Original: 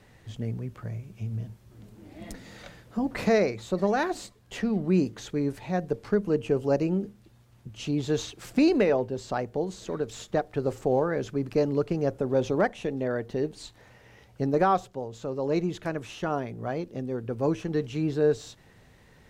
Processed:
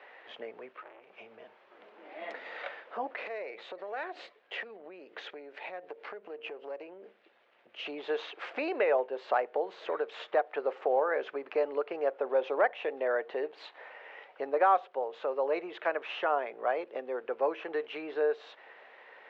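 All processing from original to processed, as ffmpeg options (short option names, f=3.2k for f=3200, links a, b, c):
-filter_complex "[0:a]asettb=1/sr,asplit=3[a][b][c];[a]atrim=end=0.724[d];[b]atrim=start=0.72:end=1.13,asetpts=PTS-STARTPTS,afade=t=in:d=0.004:c=qsin,afade=t=out:st=0.406:d=0.004:c=qsin,equalizer=f=740:w=2.1:g=-10.5,aeval=exprs='(tanh(178*val(0)+0.35)-tanh(0.35))/178':c=same[e];[c]atrim=start=1.126[f];[d][e]acrossfade=d=0.004:c1=hsin:c2=qsin[g];[g][f]acrossfade=d=0.004:c1=qsin:c2=hsin,asettb=1/sr,asplit=3[h][i][j];[h]atrim=end=3.114[k];[i]atrim=start=3.11:end=7.86,asetpts=PTS-STARTPTS,afade=t=in:d=0.004:c=qsin,afade=t=out:st=4.746:d=0.004:c=qsin,aeval=exprs='if(lt(val(0),0),0.708*val(0),val(0))':c=same,equalizer=f=990:t=o:w=1.1:g=-7,acompressor=threshold=-37dB:ratio=20:attack=3.2:release=140:knee=1:detection=peak[l];[j]atrim=start=7.856[m];[k][l]acrossfade=d=0.004:c1=hsin:c2=qsin[n];[n][m]acrossfade=d=0.004:c1=qsin:c2=hsin,lowpass=f=2.8k:w=0.5412,lowpass=f=2.8k:w=1.3066,acompressor=threshold=-34dB:ratio=2,highpass=f=510:w=0.5412,highpass=f=510:w=1.3066,volume=8.5dB"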